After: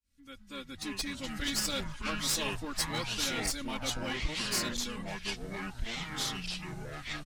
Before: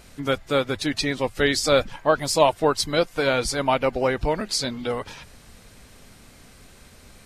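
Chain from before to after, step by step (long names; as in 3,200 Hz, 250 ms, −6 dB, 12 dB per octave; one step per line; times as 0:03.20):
fade in at the beginning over 1.19 s
guitar amp tone stack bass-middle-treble 6-0-2
comb filter 3.6 ms, depth 97%
dynamic equaliser 7,900 Hz, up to +6 dB, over −55 dBFS, Q 0.89
asymmetric clip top −40 dBFS
delay with pitch and tempo change per echo 146 ms, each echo −5 semitones, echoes 3
level +4.5 dB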